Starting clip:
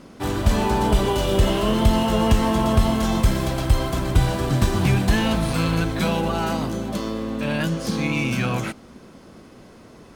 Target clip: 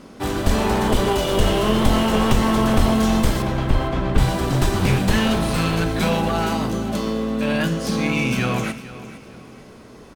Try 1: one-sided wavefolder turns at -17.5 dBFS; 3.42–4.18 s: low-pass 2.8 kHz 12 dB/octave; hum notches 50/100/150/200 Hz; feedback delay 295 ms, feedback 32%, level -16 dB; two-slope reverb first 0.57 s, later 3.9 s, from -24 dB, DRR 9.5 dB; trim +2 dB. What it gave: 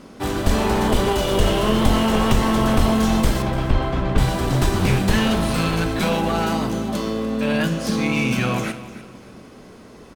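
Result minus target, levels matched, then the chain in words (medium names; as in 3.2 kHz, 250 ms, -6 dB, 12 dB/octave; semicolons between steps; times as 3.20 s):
echo 160 ms early
one-sided wavefolder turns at -17.5 dBFS; 3.42–4.18 s: low-pass 2.8 kHz 12 dB/octave; hum notches 50/100/150/200 Hz; feedback delay 455 ms, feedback 32%, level -16 dB; two-slope reverb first 0.57 s, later 3.9 s, from -24 dB, DRR 9.5 dB; trim +2 dB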